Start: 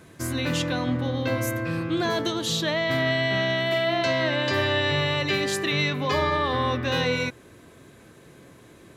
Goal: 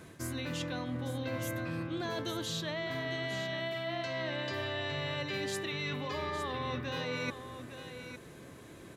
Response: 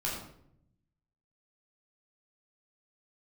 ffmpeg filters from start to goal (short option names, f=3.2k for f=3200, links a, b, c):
-af "areverse,acompressor=threshold=-32dB:ratio=10,areverse,aecho=1:1:858:0.316,volume=-1.5dB"